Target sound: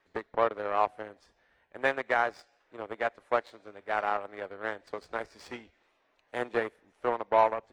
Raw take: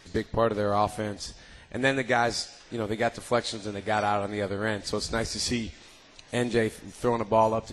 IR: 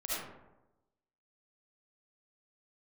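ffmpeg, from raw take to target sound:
-filter_complex "[0:a]aeval=exprs='0.335*(cos(1*acos(clip(val(0)/0.335,-1,1)))-cos(1*PI/2))+0.0376*(cos(7*acos(clip(val(0)/0.335,-1,1)))-cos(7*PI/2))':c=same,acrossover=split=360 2400:gain=0.178 1 0.112[a][b][c];[a][b][c]amix=inputs=3:normalize=0"

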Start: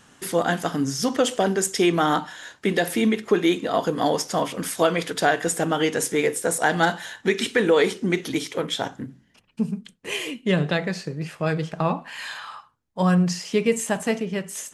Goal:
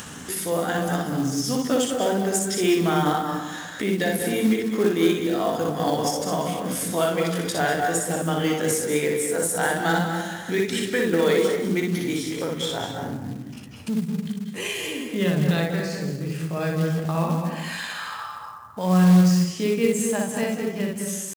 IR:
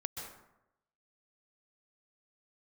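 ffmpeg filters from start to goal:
-filter_complex "[0:a]atempo=0.69,highshelf=f=6.6k:g=7,asplit=2[a][b];[1:a]atrim=start_sample=2205,lowshelf=f=290:g=10,adelay=60[c];[b][c]afir=irnorm=-1:irlink=0,volume=-1.5dB[d];[a][d]amix=inputs=2:normalize=0,acompressor=mode=upward:threshold=-18dB:ratio=2.5,highpass=63,acrusher=bits=5:mode=log:mix=0:aa=0.000001,volume=-5.5dB"

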